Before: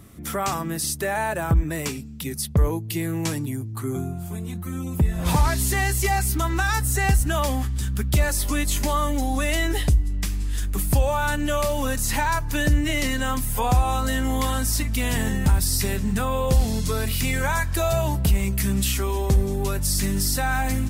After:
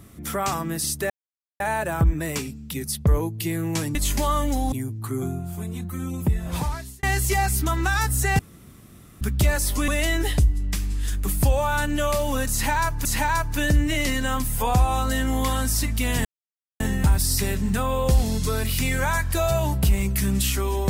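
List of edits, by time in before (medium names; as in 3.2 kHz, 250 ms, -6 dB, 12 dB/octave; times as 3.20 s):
1.10 s: insert silence 0.50 s
4.88–5.76 s: fade out
7.12–7.94 s: room tone
8.61–9.38 s: move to 3.45 s
12.02–12.55 s: loop, 2 plays
15.22 s: insert silence 0.55 s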